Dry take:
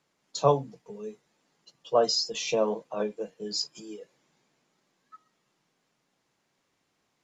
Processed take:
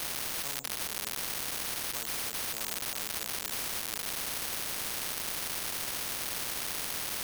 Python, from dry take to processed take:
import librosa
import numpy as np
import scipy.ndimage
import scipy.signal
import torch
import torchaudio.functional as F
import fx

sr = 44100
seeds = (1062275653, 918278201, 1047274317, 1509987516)

y = x + 0.5 * 10.0 ** (-19.0 / 20.0) * np.diff(np.sign(x), prepend=np.sign(x[:1]))
y = np.repeat(y[::6], 6)[:len(y)]
y = fx.spectral_comp(y, sr, ratio=10.0)
y = y * librosa.db_to_amplitude(-4.5)